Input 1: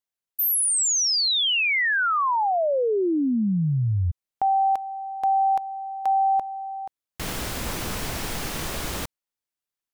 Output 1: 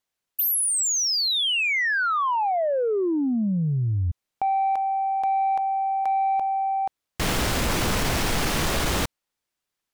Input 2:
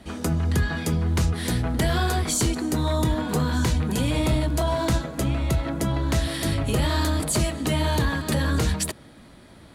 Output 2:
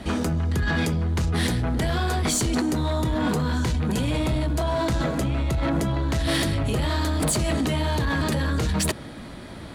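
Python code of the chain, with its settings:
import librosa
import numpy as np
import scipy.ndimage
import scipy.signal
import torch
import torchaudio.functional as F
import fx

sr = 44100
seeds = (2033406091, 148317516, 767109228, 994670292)

p1 = fx.high_shelf(x, sr, hz=8400.0, db=-7.0)
p2 = fx.over_compress(p1, sr, threshold_db=-29.0, ratio=-0.5)
p3 = p1 + (p2 * 10.0 ** (2.0 / 20.0))
p4 = 10.0 ** (-15.0 / 20.0) * np.tanh(p3 / 10.0 ** (-15.0 / 20.0))
y = p4 * 10.0 ** (-1.5 / 20.0)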